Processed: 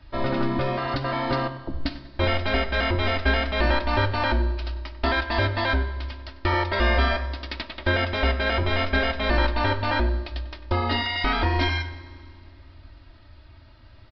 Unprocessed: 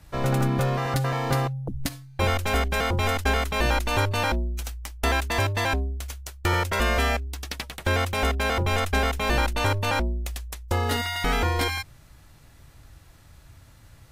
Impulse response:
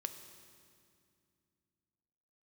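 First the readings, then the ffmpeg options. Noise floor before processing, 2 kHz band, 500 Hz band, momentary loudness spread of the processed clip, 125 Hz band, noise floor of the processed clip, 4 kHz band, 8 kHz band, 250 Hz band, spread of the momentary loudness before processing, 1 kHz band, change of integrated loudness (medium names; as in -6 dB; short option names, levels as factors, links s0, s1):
-52 dBFS, +2.0 dB, +1.5 dB, 10 LU, -1.0 dB, -49 dBFS, +1.5 dB, under -20 dB, +2.0 dB, 9 LU, +0.5 dB, +0.5 dB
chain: -filter_complex "[0:a]aecho=1:1:3.2:0.77,flanger=delay=6.9:depth=8:regen=-69:speed=0.77:shape=triangular,asplit=2[s0][s1];[s1]adelay=96,lowpass=f=2500:p=1,volume=0.2,asplit=2[s2][s3];[s3]adelay=96,lowpass=f=2500:p=1,volume=0.47,asplit=2[s4][s5];[s5]adelay=96,lowpass=f=2500:p=1,volume=0.47,asplit=2[s6][s7];[s7]adelay=96,lowpass=f=2500:p=1,volume=0.47[s8];[s0][s2][s4][s6][s8]amix=inputs=5:normalize=0,asplit=2[s9][s10];[1:a]atrim=start_sample=2205[s11];[s10][s11]afir=irnorm=-1:irlink=0,volume=1.19[s12];[s9][s12]amix=inputs=2:normalize=0,aresample=11025,aresample=44100,volume=0.794"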